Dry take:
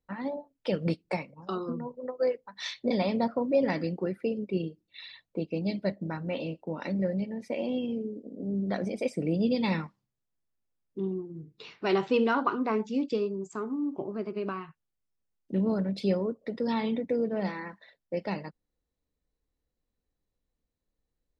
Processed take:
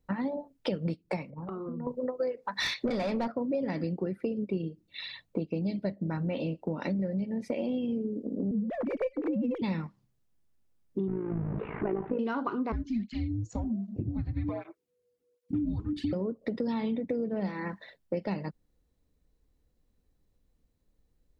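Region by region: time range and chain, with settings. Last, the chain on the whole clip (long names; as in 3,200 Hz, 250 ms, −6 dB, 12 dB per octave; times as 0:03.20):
0:01.30–0:01.87: low-pass filter 2,100 Hz 24 dB per octave + downward compressor 8 to 1, threshold −44 dBFS
0:02.37–0:03.32: notch filter 3,100 Hz, Q 5.7 + mid-hump overdrive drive 19 dB, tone 3,400 Hz, clips at −15.5 dBFS
0:08.51–0:09.62: three sine waves on the formant tracks + windowed peak hold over 3 samples
0:11.08–0:12.19: converter with a step at zero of −31.5 dBFS + Bessel low-pass filter 1,200 Hz, order 8 + amplitude modulation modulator 54 Hz, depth 60%
0:12.72–0:16.13: frequency shifter −490 Hz + through-zero flanger with one copy inverted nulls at 1.3 Hz, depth 3.6 ms
whole clip: low-shelf EQ 390 Hz +8 dB; downward compressor 6 to 1, threshold −34 dBFS; level +5 dB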